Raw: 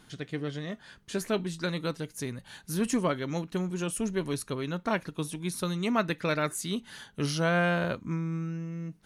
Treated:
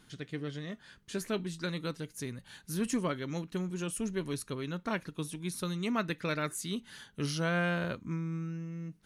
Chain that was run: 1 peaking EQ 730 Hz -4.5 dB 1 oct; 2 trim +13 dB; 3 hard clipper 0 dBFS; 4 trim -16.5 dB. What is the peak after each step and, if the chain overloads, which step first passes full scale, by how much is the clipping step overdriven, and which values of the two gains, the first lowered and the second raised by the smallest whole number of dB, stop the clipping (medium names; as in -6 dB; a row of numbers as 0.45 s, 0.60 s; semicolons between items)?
-15.0 dBFS, -2.0 dBFS, -2.0 dBFS, -18.5 dBFS; nothing clips